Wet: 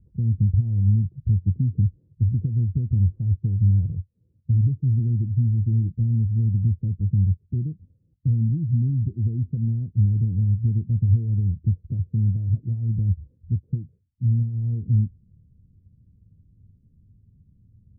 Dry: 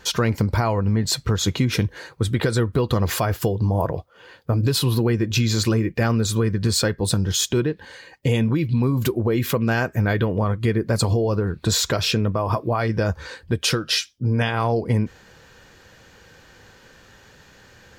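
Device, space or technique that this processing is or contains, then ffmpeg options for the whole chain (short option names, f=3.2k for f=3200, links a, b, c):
the neighbour's flat through the wall: -af "lowpass=f=200:w=0.5412,lowpass=f=200:w=1.3066,equalizer=f=93:t=o:w=0.67:g=7,volume=-2dB"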